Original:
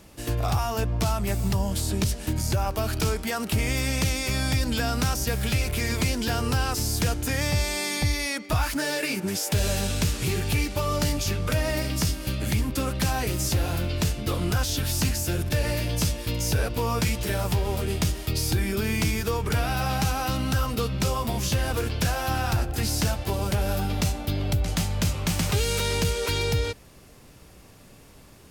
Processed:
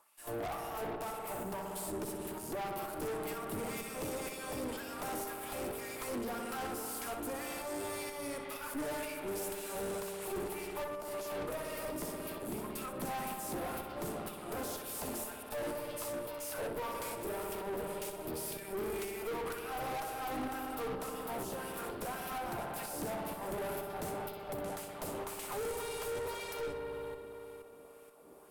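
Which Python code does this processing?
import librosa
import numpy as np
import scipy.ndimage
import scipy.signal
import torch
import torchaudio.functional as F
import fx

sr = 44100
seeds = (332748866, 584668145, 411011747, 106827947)

y = fx.filter_lfo_highpass(x, sr, shape='sine', hz=1.9, low_hz=320.0, high_hz=2400.0, q=2.1)
y = fx.rev_spring(y, sr, rt60_s=3.6, pass_ms=(58,), chirp_ms=45, drr_db=3.0)
y = fx.over_compress(y, sr, threshold_db=-31.0, ratio=-1.0, at=(10.84, 11.46))
y = fx.tremolo_shape(y, sr, shape='saw_up', hz=2.1, depth_pct=50)
y = fx.band_shelf(y, sr, hz=3300.0, db=-12.5, octaves=2.4)
y = fx.echo_feedback(y, sr, ms=63, feedback_pct=29, wet_db=-11.5)
y = fx.tube_stage(y, sr, drive_db=35.0, bias=0.65)
y = fx.low_shelf(y, sr, hz=240.0, db=5.5)
y = y * 10.0 ** (-1.5 / 20.0)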